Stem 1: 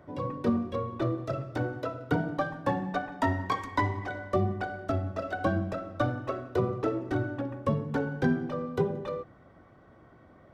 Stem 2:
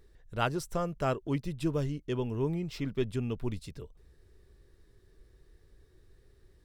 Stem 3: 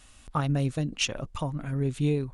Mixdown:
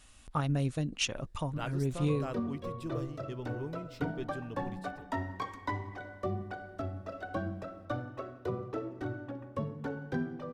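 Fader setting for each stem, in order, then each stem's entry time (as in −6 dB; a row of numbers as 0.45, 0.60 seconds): −8.0, −9.5, −4.0 decibels; 1.90, 1.20, 0.00 seconds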